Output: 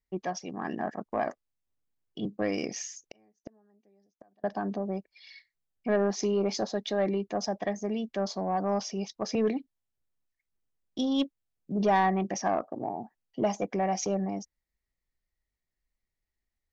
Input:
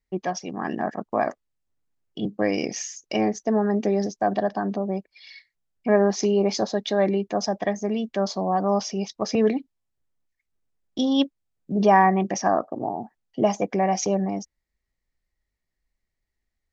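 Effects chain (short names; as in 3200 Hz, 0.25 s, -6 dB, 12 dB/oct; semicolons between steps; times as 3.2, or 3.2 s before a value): 3.03–4.44 flipped gate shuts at -23 dBFS, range -37 dB; soft clip -11 dBFS, distortion -19 dB; gain -5.5 dB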